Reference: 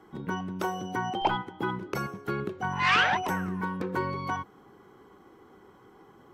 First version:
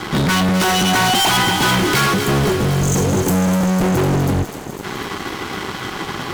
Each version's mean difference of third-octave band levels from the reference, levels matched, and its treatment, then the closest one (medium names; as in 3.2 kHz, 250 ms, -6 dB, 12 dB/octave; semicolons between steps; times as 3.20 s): 14.0 dB: spectral selection erased 2.14–4.83 s, 540–6200 Hz; graphic EQ 125/500/2000/4000 Hz +3/-6/+5/+10 dB; fuzz box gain 49 dB, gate -57 dBFS; on a send: thinning echo 251 ms, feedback 75%, high-pass 940 Hz, level -8 dB; on the sum: trim -1.5 dB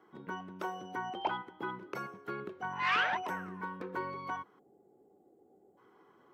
3.5 dB: time-frequency box 4.59–5.78 s, 860–6500 Hz -26 dB; high-pass 460 Hz 6 dB/octave; peaking EQ 10 kHz -10 dB 2.4 oct; band-stop 800 Hz, Q 17; trim -4.5 dB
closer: second